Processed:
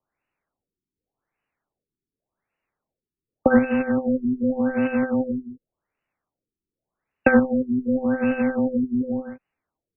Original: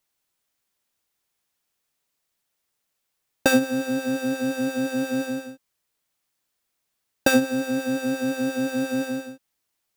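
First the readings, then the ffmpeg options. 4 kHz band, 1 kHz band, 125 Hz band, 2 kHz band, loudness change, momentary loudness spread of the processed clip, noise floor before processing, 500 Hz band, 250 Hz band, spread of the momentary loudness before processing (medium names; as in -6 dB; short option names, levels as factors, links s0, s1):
under -20 dB, +2.5 dB, +3.0 dB, 0.0 dB, +2.5 dB, 10 LU, -78 dBFS, +3.0 dB, +3.5 dB, 10 LU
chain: -af "acrusher=bits=2:mode=log:mix=0:aa=0.000001,afreqshift=-14,afftfilt=real='re*lt(b*sr/1024,400*pow(3000/400,0.5+0.5*sin(2*PI*0.87*pts/sr)))':imag='im*lt(b*sr/1024,400*pow(3000/400,0.5+0.5*sin(2*PI*0.87*pts/sr)))':win_size=1024:overlap=0.75,volume=1.41"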